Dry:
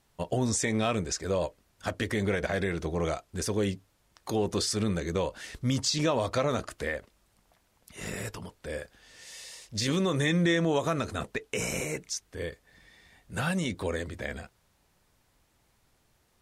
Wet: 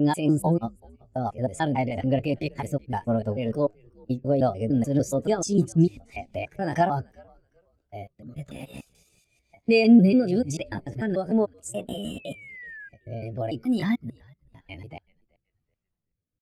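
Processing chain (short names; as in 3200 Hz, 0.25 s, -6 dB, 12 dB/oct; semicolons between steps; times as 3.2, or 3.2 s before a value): slices in reverse order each 0.147 s, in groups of 6; low shelf 410 Hz +3.5 dB; pitch shift +5 st; painted sound fall, 11.93–12.89, 1600–3200 Hz -41 dBFS; rotary speaker horn 6 Hz, later 1 Hz, at 5.91; on a send: frequency-shifting echo 0.379 s, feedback 37%, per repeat -98 Hz, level -18.5 dB; on the sum: spectral expander 1.5:1; gain +7 dB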